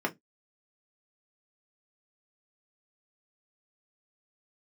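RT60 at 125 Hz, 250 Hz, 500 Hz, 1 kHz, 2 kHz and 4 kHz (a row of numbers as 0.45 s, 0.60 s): 0.25 s, 0.20 s, 0.15 s, 0.10 s, 0.15 s, 0.15 s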